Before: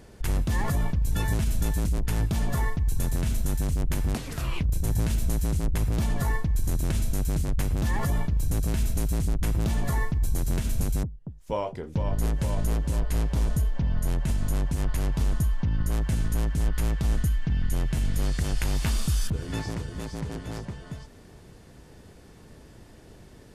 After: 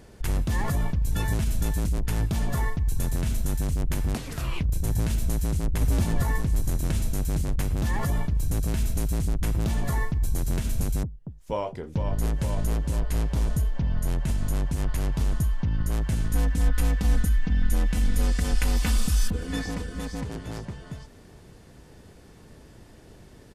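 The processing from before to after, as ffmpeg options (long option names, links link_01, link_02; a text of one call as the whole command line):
ffmpeg -i in.wav -filter_complex "[0:a]asplit=2[link_01][link_02];[link_02]afade=type=in:start_time=5.34:duration=0.01,afade=type=out:start_time=5.75:duration=0.01,aecho=0:1:470|940|1410|1880|2350|2820|3290|3760:0.944061|0.519233|0.285578|0.157068|0.0863875|0.0475131|0.0261322|0.0143727[link_03];[link_01][link_03]amix=inputs=2:normalize=0,asettb=1/sr,asplit=3[link_04][link_05][link_06];[link_04]atrim=end=16.334[link_07];[link_05]atrim=start=16.33:end=20.24,asetpts=PTS-STARTPTS,afade=type=in:duration=0.004:curve=qsin,afade=type=out:start_time=3.906:duration=0.004:curve=qsin,aecho=1:1:4:0.82,atrim=end_sample=172431[link_08];[link_06]atrim=start=20.236[link_09];[link_07][link_08]acrossfade=duration=0.004:curve1=hsin:curve2=qsin[link_10];[link_10][link_09]acrossfade=duration=0.004:curve1=qsin:curve2=hsin" out.wav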